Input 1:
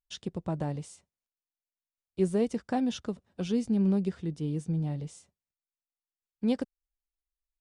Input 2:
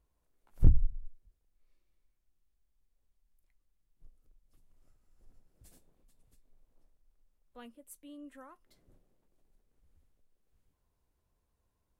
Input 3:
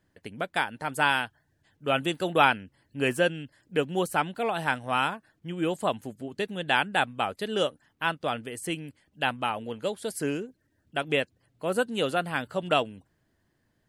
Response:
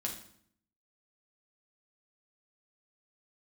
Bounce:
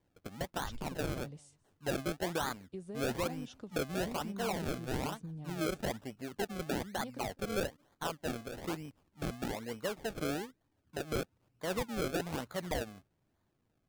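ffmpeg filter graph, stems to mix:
-filter_complex "[0:a]acompressor=threshold=-31dB:ratio=4,adelay=550,volume=-10.5dB,asplit=2[link_01][link_02];[link_02]volume=-24dB[link_03];[1:a]flanger=delay=20:depth=3.2:speed=0.53,volume=-16.5dB[link_04];[2:a]volume=-5.5dB[link_05];[link_04][link_05]amix=inputs=2:normalize=0,acrusher=samples=32:mix=1:aa=0.000001:lfo=1:lforange=32:lforate=1.1,alimiter=limit=-20.5dB:level=0:latency=1:release=423,volume=0dB[link_06];[link_03]aecho=0:1:204:1[link_07];[link_01][link_06][link_07]amix=inputs=3:normalize=0,alimiter=level_in=3dB:limit=-24dB:level=0:latency=1:release=17,volume=-3dB"

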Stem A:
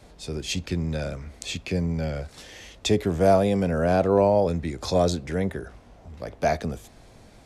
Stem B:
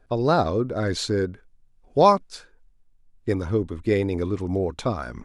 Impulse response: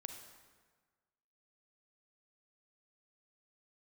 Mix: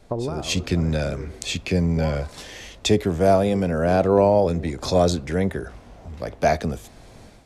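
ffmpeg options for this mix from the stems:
-filter_complex "[0:a]dynaudnorm=framelen=290:gausssize=3:maxgain=10dB,volume=-4dB,asplit=2[link_01][link_02];[1:a]lowpass=frequency=1400:width=0.5412,lowpass=frequency=1400:width=1.3066,acompressor=threshold=-27dB:ratio=6,volume=2dB,asplit=2[link_03][link_04];[link_04]volume=-7.5dB[link_05];[link_02]apad=whole_len=231128[link_06];[link_03][link_06]sidechaincompress=threshold=-37dB:ratio=8:attack=16:release=1210[link_07];[2:a]atrim=start_sample=2205[link_08];[link_05][link_08]afir=irnorm=-1:irlink=0[link_09];[link_01][link_07][link_09]amix=inputs=3:normalize=0"

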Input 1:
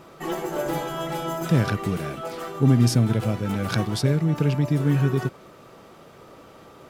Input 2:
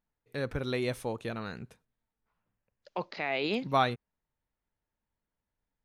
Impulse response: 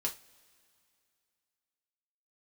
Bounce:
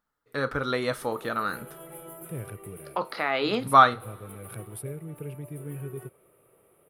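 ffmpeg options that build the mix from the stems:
-filter_complex "[0:a]firequalizer=gain_entry='entry(110,0);entry(230,-12);entry(410,-1);entry(750,-11);entry(1500,-16);entry(2300,-8);entry(4500,-23);entry(6400,-22);entry(9900,13);entry(14000,3)':delay=0.05:min_phase=1,adelay=800,volume=-8dB[link_01];[1:a]equalizer=frequency=1250:width_type=o:width=0.33:gain=9,equalizer=frequency=2500:width_type=o:width=0.33:gain=-7,equalizer=frequency=6300:width_type=o:width=0.33:gain=-4,volume=2dB,asplit=3[link_02][link_03][link_04];[link_03]volume=-6dB[link_05];[link_04]apad=whole_len=343912[link_06];[link_01][link_06]sidechaincompress=threshold=-40dB:ratio=8:attack=50:release=138[link_07];[2:a]atrim=start_sample=2205[link_08];[link_05][link_08]afir=irnorm=-1:irlink=0[link_09];[link_07][link_02][link_09]amix=inputs=3:normalize=0,lowshelf=frequency=180:gain=-9,equalizer=frequency=1400:width_type=o:width=0.67:gain=4.5"

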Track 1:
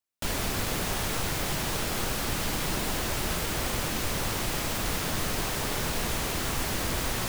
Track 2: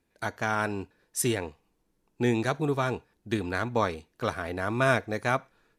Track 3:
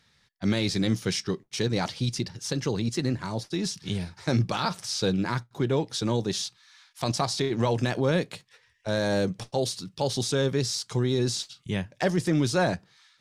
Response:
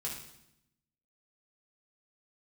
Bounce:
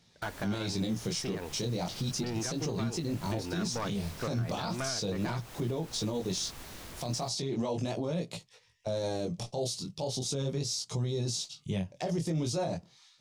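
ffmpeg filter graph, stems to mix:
-filter_complex "[0:a]volume=-16.5dB[link_01];[1:a]lowpass=4700,volume=0dB[link_02];[2:a]equalizer=frequency=160:width_type=o:width=0.67:gain=5,equalizer=frequency=630:width_type=o:width=0.67:gain=5,equalizer=frequency=1600:width_type=o:width=0.67:gain=-11,equalizer=frequency=6300:width_type=o:width=0.67:gain=4,flanger=delay=17.5:depth=7.7:speed=0.36,volume=2dB[link_03];[link_01][link_02]amix=inputs=2:normalize=0,aeval=exprs='clip(val(0),-1,0.0596)':channel_layout=same,acompressor=threshold=-33dB:ratio=3,volume=0dB[link_04];[link_03][link_04]amix=inputs=2:normalize=0,alimiter=limit=-24dB:level=0:latency=1:release=151"

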